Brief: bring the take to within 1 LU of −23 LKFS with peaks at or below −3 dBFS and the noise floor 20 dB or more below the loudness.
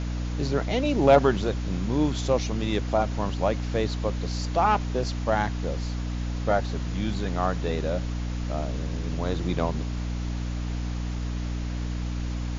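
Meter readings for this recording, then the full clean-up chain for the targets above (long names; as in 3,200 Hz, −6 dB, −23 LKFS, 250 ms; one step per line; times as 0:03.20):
mains hum 60 Hz; hum harmonics up to 300 Hz; level of the hum −27 dBFS; background noise floor −30 dBFS; target noise floor −47 dBFS; integrated loudness −27.0 LKFS; sample peak −6.0 dBFS; target loudness −23.0 LKFS
→ hum removal 60 Hz, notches 5
broadband denoise 17 dB, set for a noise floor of −30 dBFS
level +4 dB
brickwall limiter −3 dBFS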